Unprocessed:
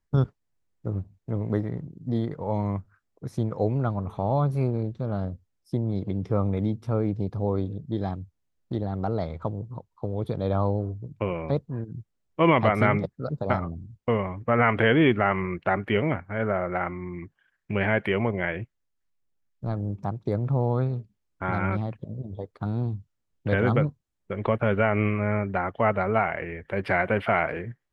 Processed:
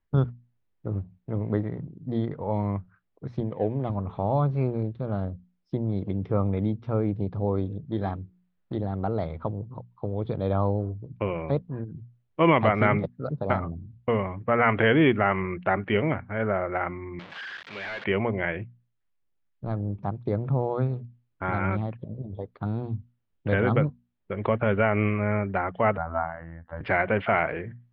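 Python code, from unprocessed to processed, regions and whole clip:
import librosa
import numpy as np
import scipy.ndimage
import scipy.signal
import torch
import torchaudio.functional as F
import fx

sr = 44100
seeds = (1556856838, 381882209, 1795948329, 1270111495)

y = fx.chain(x, sr, fx.median_filter(points=25),
    fx.high_shelf(hz=2500.0, db=-8.5),
    fx.notch_comb(f0_hz=1400.0), at=(3.4, 3.9))
y = fx.chain(y, sr, fx.peak_eq(hz=1400.0, db=4.5, octaves=1.6),
    fx.hum_notches(base_hz=60, count=8), at=(7.86, 8.74))
y = fx.chain(y, sr, fx.delta_mod(bps=64000, step_db=-28.5),
    fx.highpass(hz=1200.0, slope=6),
    fx.clip_hard(threshold_db=-31.0), at=(17.19, 18.04))
y = fx.chain(y, sr, fx.lowpass(hz=2200.0, slope=12),
    fx.fixed_phaser(hz=1000.0, stages=4),
    fx.robotise(hz=82.8), at=(25.97, 26.81))
y = scipy.signal.sosfilt(scipy.signal.butter(4, 3700.0, 'lowpass', fs=sr, output='sos'), y)
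y = fx.hum_notches(y, sr, base_hz=60, count=4)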